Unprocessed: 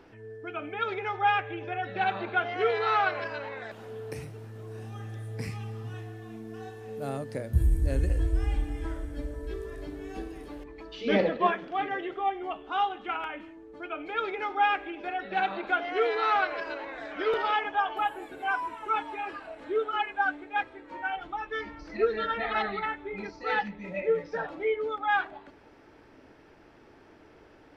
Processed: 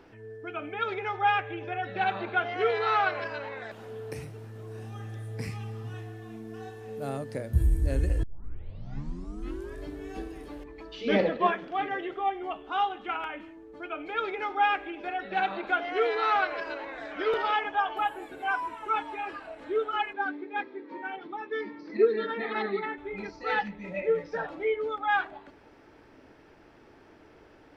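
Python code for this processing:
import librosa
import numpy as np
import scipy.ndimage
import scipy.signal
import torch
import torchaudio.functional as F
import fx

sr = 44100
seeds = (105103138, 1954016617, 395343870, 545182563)

y = fx.cabinet(x, sr, low_hz=160.0, low_slope=24, high_hz=4800.0, hz=(250.0, 390.0, 690.0, 1400.0, 2900.0), db=(7, 9, -10, -7, -8), at=(20.13, 22.98))
y = fx.edit(y, sr, fx.tape_start(start_s=8.23, length_s=1.57), tone=tone)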